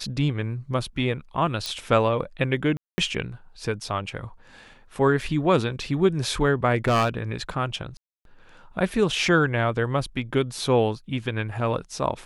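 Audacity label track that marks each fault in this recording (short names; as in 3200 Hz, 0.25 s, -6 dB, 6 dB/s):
1.660000	1.660000	pop -14 dBFS
2.770000	2.980000	gap 0.21 s
5.210000	5.210000	gap 3 ms
6.750000	7.190000	clipped -16.5 dBFS
7.970000	8.250000	gap 0.282 s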